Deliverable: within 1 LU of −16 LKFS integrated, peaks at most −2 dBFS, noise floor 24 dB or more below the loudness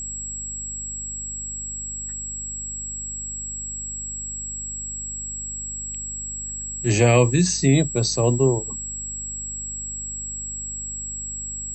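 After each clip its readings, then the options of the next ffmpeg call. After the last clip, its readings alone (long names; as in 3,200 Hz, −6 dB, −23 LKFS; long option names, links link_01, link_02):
mains hum 50 Hz; hum harmonics up to 250 Hz; level of the hum −38 dBFS; interfering tone 7,700 Hz; level of the tone −29 dBFS; integrated loudness −24.5 LKFS; sample peak −4.5 dBFS; target loudness −16.0 LKFS
→ -af "bandreject=frequency=50:width_type=h:width=4,bandreject=frequency=100:width_type=h:width=4,bandreject=frequency=150:width_type=h:width=4,bandreject=frequency=200:width_type=h:width=4,bandreject=frequency=250:width_type=h:width=4"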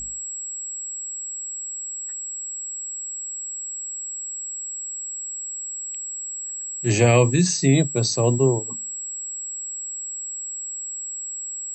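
mains hum none found; interfering tone 7,700 Hz; level of the tone −29 dBFS
→ -af "bandreject=frequency=7700:width=30"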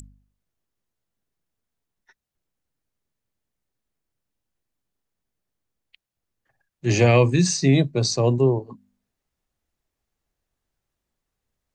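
interfering tone none found; integrated loudness −19.5 LKFS; sample peak −4.5 dBFS; target loudness −16.0 LKFS
→ -af "volume=3.5dB,alimiter=limit=-2dB:level=0:latency=1"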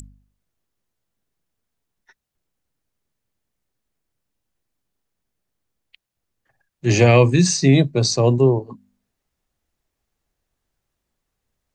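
integrated loudness −16.5 LKFS; sample peak −2.0 dBFS; background noise floor −80 dBFS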